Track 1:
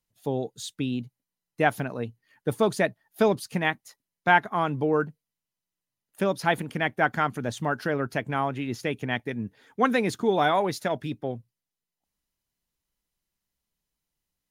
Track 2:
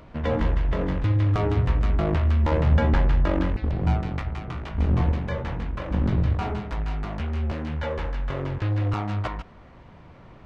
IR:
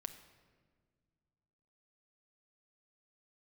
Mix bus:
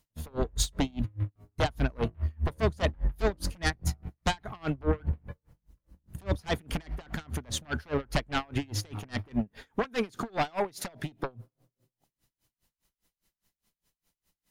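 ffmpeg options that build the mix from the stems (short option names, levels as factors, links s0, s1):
-filter_complex "[0:a]acompressor=threshold=0.0316:ratio=5,aeval=exprs='0.0708*sin(PI/2*2*val(0)/0.0708)':c=same,volume=1.26,asplit=3[s0][s1][s2];[s1]volume=0.112[s3];[1:a]lowpass=2900,lowshelf=f=180:g=12,volume=0.178,asplit=2[s4][s5];[s5]volume=0.106[s6];[s2]apad=whole_len=461181[s7];[s4][s7]sidechaingate=range=0.0224:threshold=0.00112:ratio=16:detection=peak[s8];[2:a]atrim=start_sample=2205[s9];[s3][s6]amix=inputs=2:normalize=0[s10];[s10][s9]afir=irnorm=-1:irlink=0[s11];[s0][s8][s11]amix=inputs=3:normalize=0,aeval=exprs='val(0)*pow(10,-31*(0.5-0.5*cos(2*PI*4.9*n/s))/20)':c=same"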